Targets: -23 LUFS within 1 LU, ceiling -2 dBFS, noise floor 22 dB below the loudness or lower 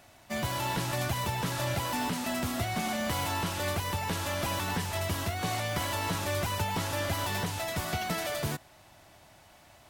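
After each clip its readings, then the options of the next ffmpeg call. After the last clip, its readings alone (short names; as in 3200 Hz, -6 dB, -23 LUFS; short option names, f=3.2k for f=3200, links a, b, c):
loudness -31.5 LUFS; peak -17.5 dBFS; loudness target -23.0 LUFS
-> -af "volume=8.5dB"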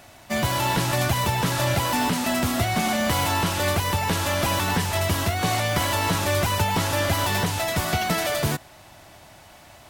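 loudness -23.0 LUFS; peak -9.0 dBFS; noise floor -49 dBFS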